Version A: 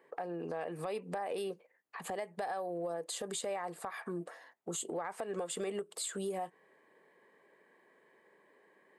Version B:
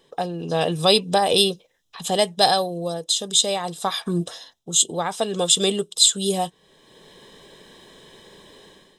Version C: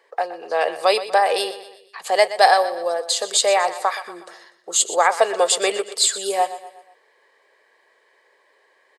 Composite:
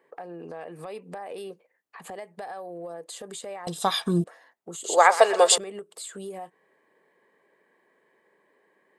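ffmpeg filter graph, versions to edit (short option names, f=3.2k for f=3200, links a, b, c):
-filter_complex "[0:a]asplit=3[a][b][c];[a]atrim=end=3.672[d];[1:a]atrim=start=3.668:end=4.242[e];[b]atrim=start=4.238:end=4.842[f];[2:a]atrim=start=4.838:end=5.582[g];[c]atrim=start=5.578[h];[d][e]acrossfade=d=0.004:c1=hsin:c2=hsin[i];[i][f]acrossfade=d=0.004:c1=hsin:c2=hsin[j];[j][g]acrossfade=d=0.004:c1=hsin:c2=hsin[k];[k][h]acrossfade=d=0.004:c1=hsin:c2=hsin"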